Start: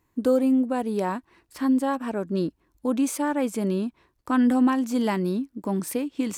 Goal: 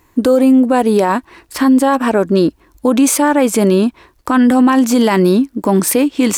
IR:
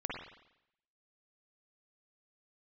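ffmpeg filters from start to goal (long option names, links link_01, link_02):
-af "equalizer=frequency=150:width_type=o:width=1.6:gain=-6,alimiter=level_in=21.5dB:limit=-1dB:release=50:level=0:latency=1,volume=-3dB"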